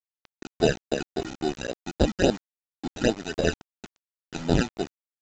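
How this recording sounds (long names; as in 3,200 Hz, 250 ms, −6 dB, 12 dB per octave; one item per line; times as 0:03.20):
aliases and images of a low sample rate 1,100 Hz, jitter 0%
phaser sweep stages 12, 3.6 Hz, lowest notch 520–2,200 Hz
a quantiser's noise floor 6 bits, dither none
mu-law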